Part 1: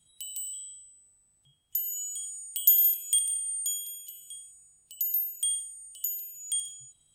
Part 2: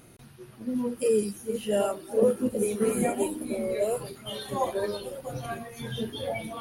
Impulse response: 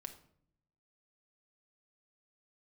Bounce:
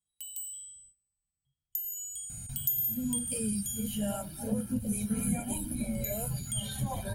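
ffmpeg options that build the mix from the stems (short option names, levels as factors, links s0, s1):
-filter_complex "[0:a]bandreject=f=50:t=h:w=6,bandreject=f=100:t=h:w=6,bandreject=f=150:t=h:w=6,agate=range=0.1:threshold=0.002:ratio=16:detection=peak,highshelf=f=2600:g=-11,volume=0.668,asplit=3[s0][s1][s2];[s0]atrim=end=4.21,asetpts=PTS-STARTPTS,afade=t=out:st=4.206:d=0.004:c=hsin[s3];[s1]atrim=start=4.21:end=5.77,asetpts=PTS-STARTPTS,volume=0[s4];[s2]atrim=start=5.77,asetpts=PTS-STARTPTS,afade=t=in:d=0.004:c=hsin[s5];[s3][s4][s5]concat=n=3:v=0:a=1,asplit=2[s6][s7];[s7]volume=0.211[s8];[1:a]aecho=1:1:1.3:0.8,adelay=2300,volume=0.531[s9];[2:a]atrim=start_sample=2205[s10];[s8][s10]afir=irnorm=-1:irlink=0[s11];[s6][s9][s11]amix=inputs=3:normalize=0,asubboost=boost=10:cutoff=170,crystalizer=i=2:c=0,acompressor=threshold=0.0224:ratio=2"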